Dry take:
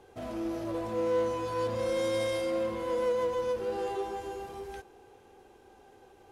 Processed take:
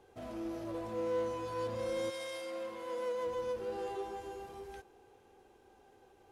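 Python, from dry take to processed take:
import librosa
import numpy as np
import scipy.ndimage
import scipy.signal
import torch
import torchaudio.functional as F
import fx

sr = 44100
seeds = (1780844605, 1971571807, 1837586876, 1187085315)

y = fx.highpass(x, sr, hz=fx.line((2.09, 1200.0), (3.25, 320.0)), slope=6, at=(2.09, 3.25), fade=0.02)
y = F.gain(torch.from_numpy(y), -6.0).numpy()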